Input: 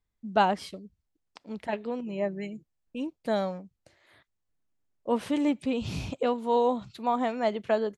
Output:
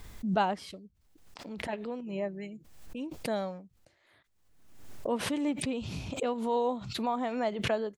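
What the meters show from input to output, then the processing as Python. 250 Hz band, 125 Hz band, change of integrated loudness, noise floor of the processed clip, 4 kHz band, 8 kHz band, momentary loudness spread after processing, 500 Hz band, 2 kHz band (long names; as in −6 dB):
−3.5 dB, −0.5 dB, −4.0 dB, −69 dBFS, +0.5 dB, +6.0 dB, 15 LU, −4.5 dB, −2.0 dB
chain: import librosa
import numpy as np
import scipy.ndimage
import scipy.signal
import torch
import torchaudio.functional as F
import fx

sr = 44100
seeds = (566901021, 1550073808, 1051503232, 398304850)

y = fx.pre_swell(x, sr, db_per_s=56.0)
y = y * 10.0 ** (-5.0 / 20.0)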